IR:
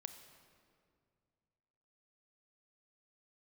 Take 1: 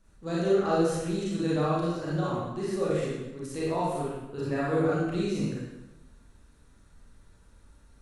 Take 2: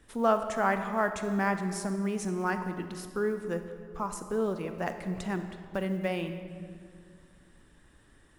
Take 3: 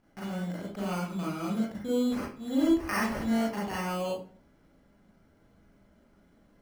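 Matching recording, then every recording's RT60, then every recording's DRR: 2; 1.0 s, 2.2 s, 0.40 s; -8.0 dB, 8.0 dB, -5.5 dB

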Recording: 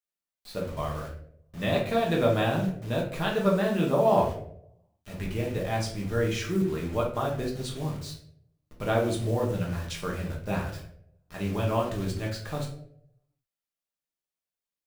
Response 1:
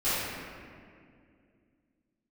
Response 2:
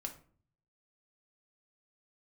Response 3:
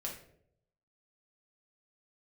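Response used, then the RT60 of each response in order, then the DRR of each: 3; 2.3 s, 0.45 s, 0.70 s; -18.0 dB, 3.0 dB, -2.5 dB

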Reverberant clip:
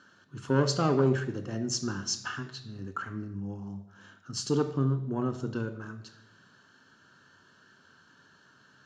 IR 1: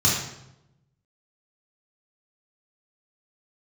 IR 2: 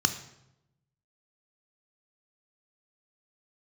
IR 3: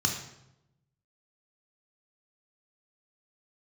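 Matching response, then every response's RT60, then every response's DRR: 2; 0.85 s, 0.85 s, 0.85 s; -6.5 dB, 8.0 dB, 1.5 dB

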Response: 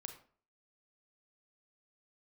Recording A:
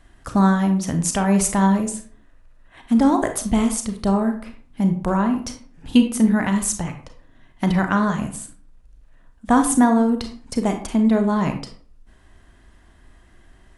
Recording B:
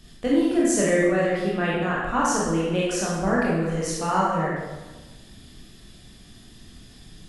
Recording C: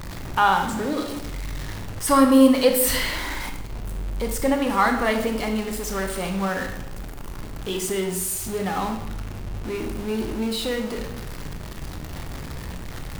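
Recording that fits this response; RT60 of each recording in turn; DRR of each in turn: A; 0.45 s, 1.2 s, 0.90 s; 5.5 dB, -6.0 dB, 4.0 dB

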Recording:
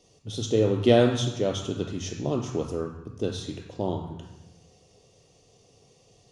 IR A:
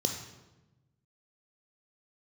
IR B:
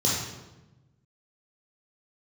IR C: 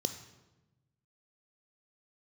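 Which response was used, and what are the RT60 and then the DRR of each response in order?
A; 1.0 s, 1.0 s, 1.0 s; 5.5 dB, -4.0 dB, 10.5 dB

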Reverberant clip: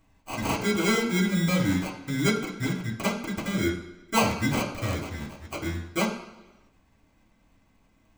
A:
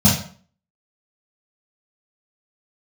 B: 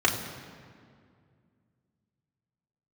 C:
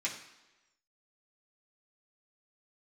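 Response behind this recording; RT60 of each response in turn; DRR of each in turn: C; 0.50 s, 2.2 s, 1.1 s; -7.0 dB, -2.0 dB, -6.0 dB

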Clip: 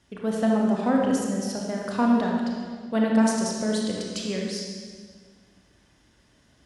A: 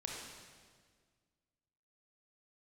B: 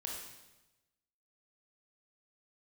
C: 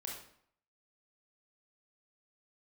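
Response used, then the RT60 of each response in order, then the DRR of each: A; 1.7 s, 1.0 s, 0.65 s; -2.0 dB, -2.0 dB, -2.0 dB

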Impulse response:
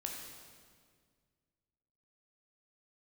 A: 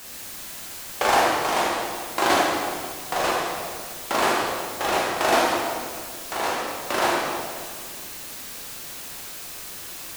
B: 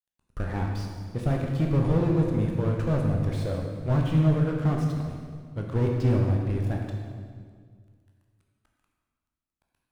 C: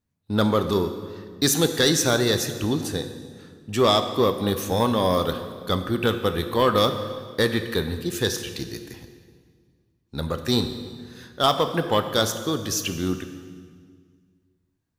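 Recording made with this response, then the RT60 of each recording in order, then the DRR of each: B; 1.9 s, 1.9 s, 1.9 s; -5.0 dB, 0.0 dB, 8.0 dB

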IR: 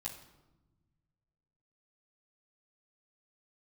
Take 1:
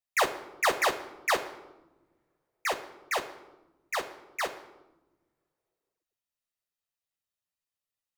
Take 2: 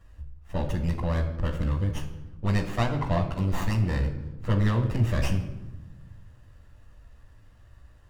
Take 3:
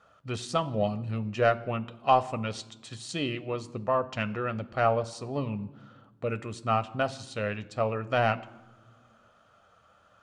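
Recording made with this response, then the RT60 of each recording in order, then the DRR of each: 2; 1.1 s, 1.1 s, no single decay rate; 2.0 dB, -6.5 dB, 10.0 dB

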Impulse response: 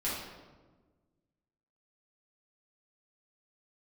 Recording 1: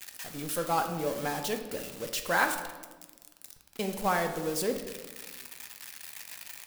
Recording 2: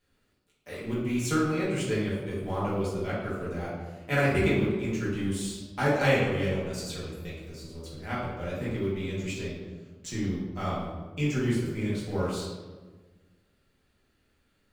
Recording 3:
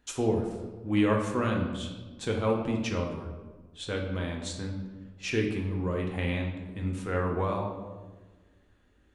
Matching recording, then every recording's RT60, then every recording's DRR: 2; 1.4 s, 1.4 s, 1.4 s; 5.0 dB, -9.0 dB, 0.0 dB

